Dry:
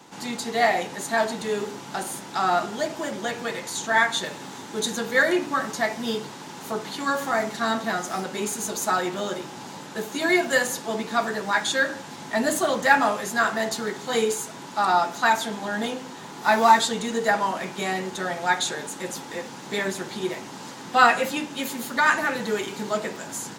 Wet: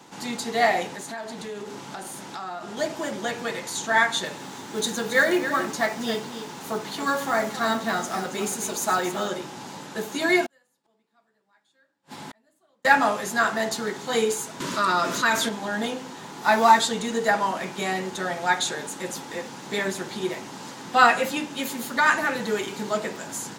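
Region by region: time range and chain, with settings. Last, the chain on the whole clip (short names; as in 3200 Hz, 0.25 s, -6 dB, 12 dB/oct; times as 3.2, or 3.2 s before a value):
0.89–2.77 compressor 5:1, threshold -32 dBFS + Doppler distortion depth 0.12 ms
4.38–9.28 companded quantiser 6-bit + echo 0.275 s -10.5 dB
10.46–12.85 bell 6200 Hz -6 dB 0.27 oct + notches 60/120/180/240/300/360/420/480/540 Hz + flipped gate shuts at -27 dBFS, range -42 dB
14.6–15.49 Butterworth band-stop 790 Hz, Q 2.7 + fast leveller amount 50%
whole clip: dry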